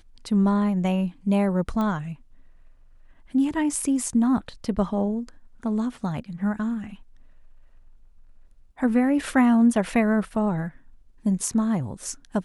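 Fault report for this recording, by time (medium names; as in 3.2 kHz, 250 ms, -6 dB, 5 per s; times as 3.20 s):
1.81 s: pop -17 dBFS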